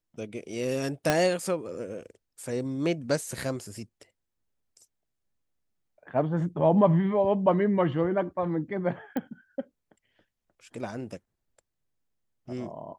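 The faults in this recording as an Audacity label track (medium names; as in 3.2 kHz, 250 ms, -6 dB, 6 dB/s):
1.100000	1.100000	pop -8 dBFS
9.170000	9.170000	pop -19 dBFS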